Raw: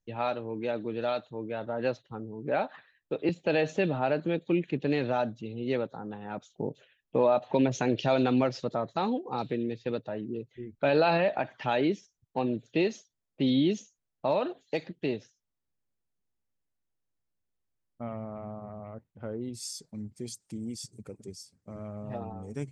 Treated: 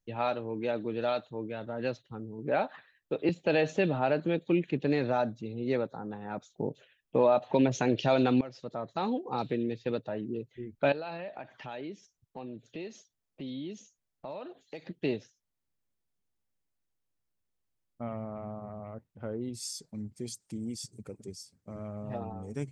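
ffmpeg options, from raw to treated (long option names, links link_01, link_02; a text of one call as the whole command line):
ffmpeg -i in.wav -filter_complex "[0:a]asettb=1/sr,asplit=3[link_01][link_02][link_03];[link_01]atrim=end=1.474[link_04];[link_02]atrim=start=1.47:end=2.39,asetpts=PTS-STARTPTS,afade=type=in:duration=0.004:curve=qsin,afade=type=out:start_time=0.916:duration=0.004:curve=qsin,equalizer=frequency=810:width=0.67:gain=-5.5[link_05];[link_03]atrim=start=2.386[link_06];[link_04][link_05]acrossfade=duration=0.004:curve1=hsin:curve2=qsin[link_07];[link_07][link_06]acrossfade=duration=0.004:curve1=qsin:curve2=hsin,asettb=1/sr,asplit=3[link_08][link_09][link_10];[link_08]atrim=end=4.864[link_11];[link_09]atrim=start=4.86:end=6.61,asetpts=PTS-STARTPTS,afade=type=in:duration=0.004:curve=qsin,afade=type=out:start_time=1.746:duration=0.004:curve=qsin,equalizer=frequency=3000:width=4.8:gain=-9[link_12];[link_10]atrim=start=6.606[link_13];[link_11][link_12]acrossfade=duration=0.004:curve1=hsin:curve2=qsin[link_14];[link_14][link_13]acrossfade=duration=0.004:curve1=qsin:curve2=hsin,asettb=1/sr,asplit=3[link_15][link_16][link_17];[link_15]atrim=end=10.924[link_18];[link_16]atrim=start=10.92:end=14.86,asetpts=PTS-STARTPTS,afade=type=in:duration=0.004:curve=qsin,afade=type=out:start_time=3.936:duration=0.004:curve=qsin,acompressor=threshold=-48dB:ratio=2:attack=3.2:release=140:knee=1:detection=peak[link_19];[link_17]atrim=start=14.856[link_20];[link_18][link_19]acrossfade=duration=0.004:curve1=hsin:curve2=qsin[link_21];[link_21][link_20]acrossfade=duration=0.004:curve1=qsin:curve2=hsin,asplit=2[link_22][link_23];[link_22]atrim=end=8.41,asetpts=PTS-STARTPTS,afade=type=out:start_time=8.406:duration=0.004:curve=hsin:silence=0.133352[link_24];[link_23]atrim=start=8.41,asetpts=PTS-STARTPTS,afade=type=in:duration=0.86:silence=0.133352[link_25];[link_24][link_25]concat=n=2:v=0:a=1" out.wav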